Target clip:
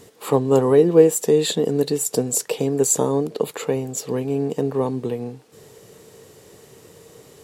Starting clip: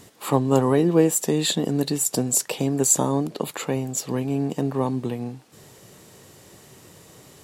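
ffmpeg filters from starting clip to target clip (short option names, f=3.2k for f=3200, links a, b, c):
-af "equalizer=f=450:w=4.4:g=12,volume=-1dB"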